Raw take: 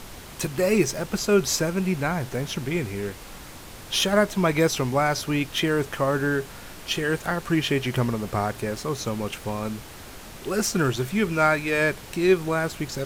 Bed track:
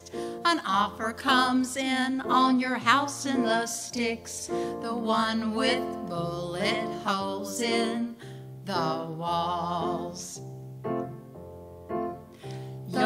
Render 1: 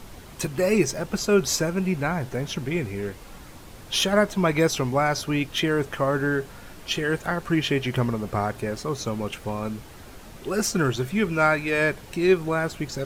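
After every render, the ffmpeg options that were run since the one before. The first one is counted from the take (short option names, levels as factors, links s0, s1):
-af "afftdn=nr=6:nf=-42"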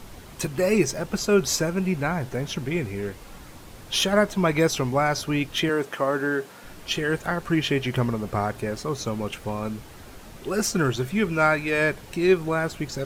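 -filter_complex "[0:a]asettb=1/sr,asplit=3[s0][s1][s2];[s0]atrim=end=5.694[s3];[s1]atrim=start=5.69:end=6.64,asetpts=PTS-STARTPTS,afade=t=in:d=0.004:c=qsin,afade=t=out:st=0.946:d=0.004:c=qsin,highpass=220[s4];[s2]atrim=start=6.636[s5];[s3][s4]acrossfade=d=0.004:c1=hsin:c2=qsin[s6];[s6][s5]acrossfade=d=0.004:c1=qsin:c2=hsin"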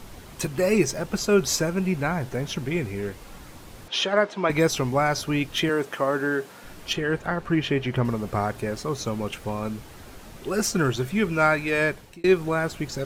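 -filter_complex "[0:a]asettb=1/sr,asplit=3[s0][s1][s2];[s0]atrim=end=3.884[s3];[s1]atrim=start=3.88:end=4.5,asetpts=PTS-STARTPTS,afade=t=in:d=0.004:c=qsin,afade=t=out:st=0.616:d=0.004:c=qsin,highpass=310,lowpass=4300[s4];[s2]atrim=start=4.496[s5];[s3][s4]acrossfade=d=0.004:c1=hsin:c2=qsin[s6];[s6][s5]acrossfade=d=0.004:c1=qsin:c2=hsin,asettb=1/sr,asplit=3[s7][s8][s9];[s7]atrim=end=6.934[s10];[s8]atrim=start=6.93:end=8.05,asetpts=PTS-STARTPTS,afade=t=in:d=0.004:c=qsin,afade=t=out:st=1.116:d=0.004:c=qsin,highshelf=f=4700:g=-11.5[s11];[s9]atrim=start=8.046[s12];[s10][s11]acrossfade=d=0.004:c1=hsin:c2=qsin[s13];[s13][s12]acrossfade=d=0.004:c1=qsin:c2=hsin,asplit=2[s14][s15];[s14]atrim=end=12.24,asetpts=PTS-STARTPTS,afade=t=out:st=11.7:d=0.54:c=qsin[s16];[s15]atrim=start=12.24,asetpts=PTS-STARTPTS,afade=t=in:d=0.004:c=hsin[s17];[s16][s17]concat=n=2:v=0:a=1"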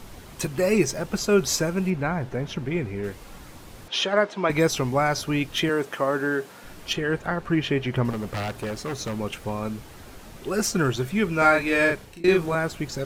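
-filter_complex "[0:a]asettb=1/sr,asplit=3[s0][s1][s2];[s0]atrim=end=1.904[s3];[s1]atrim=start=1.9:end=3.04,asetpts=PTS-STARTPTS,afade=t=in:d=0.004:c=qsin,afade=t=out:st=1.136:d=0.004:c=qsin,highshelf=f=4700:g=-12[s4];[s2]atrim=start=3.036[s5];[s3][s4]acrossfade=d=0.004:c1=hsin:c2=qsin[s6];[s6][s5]acrossfade=d=0.004:c1=qsin:c2=hsin,asettb=1/sr,asplit=3[s7][s8][s9];[s7]atrim=end=8.104[s10];[s8]atrim=start=8.1:end=9.16,asetpts=PTS-STARTPTS,afade=t=in:d=0.004:c=qsin,afade=t=out:st=1.056:d=0.004:c=qsin,aeval=exprs='0.0668*(abs(mod(val(0)/0.0668+3,4)-2)-1)':c=same[s11];[s9]atrim=start=9.156[s12];[s10][s11]acrossfade=d=0.004:c1=hsin:c2=qsin[s13];[s13][s12]acrossfade=d=0.004:c1=qsin:c2=hsin,asettb=1/sr,asplit=3[s14][s15][s16];[s14]atrim=end=11.384[s17];[s15]atrim=start=11.38:end=12.55,asetpts=PTS-STARTPTS,afade=t=in:d=0.004:c=qsin,afade=t=out:st=1.166:d=0.004:c=qsin,asplit=2[s18][s19];[s19]adelay=36,volume=0.794[s20];[s18][s20]amix=inputs=2:normalize=0,atrim=end_sample=51597[s21];[s16]atrim=start=12.546[s22];[s17][s21]acrossfade=d=0.004:c1=hsin:c2=qsin[s23];[s23][s22]acrossfade=d=0.004:c1=qsin:c2=hsin"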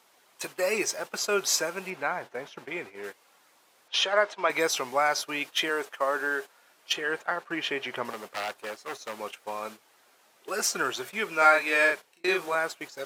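-af "agate=range=0.224:threshold=0.0316:ratio=16:detection=peak,highpass=620"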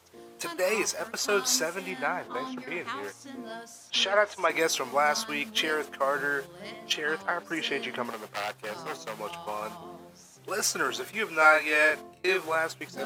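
-filter_complex "[1:a]volume=0.178[s0];[0:a][s0]amix=inputs=2:normalize=0"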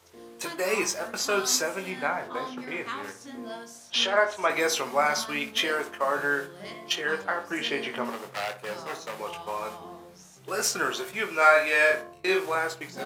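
-filter_complex "[0:a]asplit=2[s0][s1];[s1]adelay=21,volume=0.501[s2];[s0][s2]amix=inputs=2:normalize=0,asplit=2[s3][s4];[s4]adelay=60,lowpass=f=1500:p=1,volume=0.316,asplit=2[s5][s6];[s6]adelay=60,lowpass=f=1500:p=1,volume=0.38,asplit=2[s7][s8];[s8]adelay=60,lowpass=f=1500:p=1,volume=0.38,asplit=2[s9][s10];[s10]adelay=60,lowpass=f=1500:p=1,volume=0.38[s11];[s3][s5][s7][s9][s11]amix=inputs=5:normalize=0"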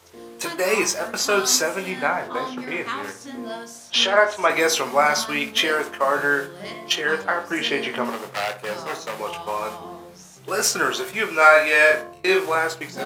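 -af "volume=2,alimiter=limit=0.891:level=0:latency=1"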